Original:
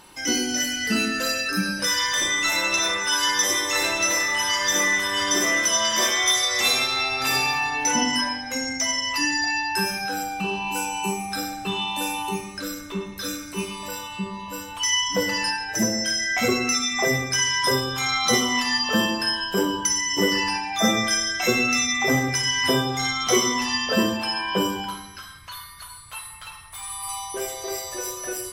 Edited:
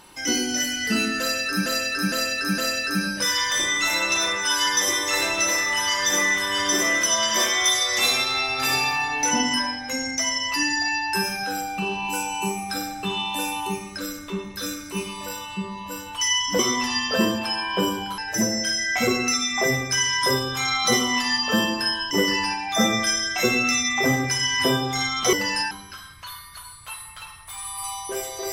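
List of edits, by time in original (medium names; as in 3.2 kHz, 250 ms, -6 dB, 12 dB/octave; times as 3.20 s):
1.20–1.66 s: loop, 4 plays
15.21–15.59 s: swap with 23.37–24.96 s
19.52–20.15 s: delete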